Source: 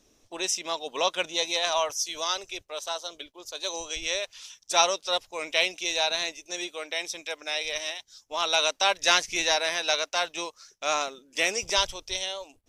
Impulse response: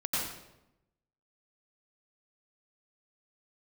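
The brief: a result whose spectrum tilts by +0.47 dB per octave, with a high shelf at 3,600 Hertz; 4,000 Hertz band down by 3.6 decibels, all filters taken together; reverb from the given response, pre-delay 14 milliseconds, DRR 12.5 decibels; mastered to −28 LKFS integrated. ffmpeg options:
-filter_complex "[0:a]highshelf=frequency=3600:gain=5,equalizer=frequency=4000:width_type=o:gain=-7.5,asplit=2[link_01][link_02];[1:a]atrim=start_sample=2205,adelay=14[link_03];[link_02][link_03]afir=irnorm=-1:irlink=0,volume=-19.5dB[link_04];[link_01][link_04]amix=inputs=2:normalize=0"

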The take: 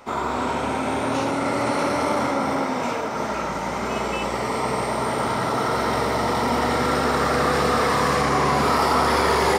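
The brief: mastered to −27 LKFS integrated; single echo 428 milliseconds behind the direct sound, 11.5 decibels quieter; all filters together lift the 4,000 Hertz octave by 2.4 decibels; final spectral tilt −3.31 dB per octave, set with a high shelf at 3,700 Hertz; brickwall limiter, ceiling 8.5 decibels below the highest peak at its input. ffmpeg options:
ffmpeg -i in.wav -af "highshelf=frequency=3700:gain=-7.5,equalizer=frequency=4000:width_type=o:gain=8,alimiter=limit=-17dB:level=0:latency=1,aecho=1:1:428:0.266,volume=-1.5dB" out.wav

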